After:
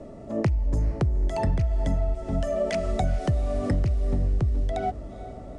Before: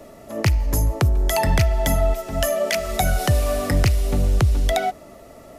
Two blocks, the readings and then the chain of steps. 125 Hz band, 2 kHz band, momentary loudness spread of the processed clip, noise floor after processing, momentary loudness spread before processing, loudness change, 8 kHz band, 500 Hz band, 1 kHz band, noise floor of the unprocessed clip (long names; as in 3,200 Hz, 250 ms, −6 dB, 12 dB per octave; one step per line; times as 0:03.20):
−5.0 dB, −13.5 dB, 5 LU, −41 dBFS, 4 LU, −5.5 dB, −19.5 dB, −5.5 dB, −7.5 dB, −44 dBFS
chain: elliptic low-pass filter 9,100 Hz, stop band 50 dB
tilt shelving filter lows +9 dB, about 850 Hz
downward compressor, threshold −19 dBFS, peak gain reduction 13.5 dB
feedback delay with all-pass diffusion 453 ms, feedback 45%, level −14.5 dB
level −2.5 dB